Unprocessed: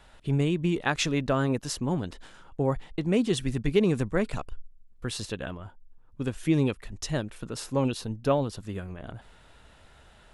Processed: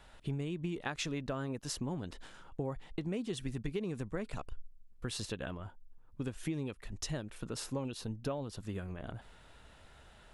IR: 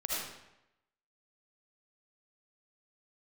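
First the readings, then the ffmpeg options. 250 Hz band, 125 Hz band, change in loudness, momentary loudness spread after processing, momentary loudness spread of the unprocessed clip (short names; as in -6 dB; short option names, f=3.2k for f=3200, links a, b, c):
-11.5 dB, -10.5 dB, -11.5 dB, 16 LU, 14 LU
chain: -af "acompressor=threshold=-31dB:ratio=6,volume=-3dB"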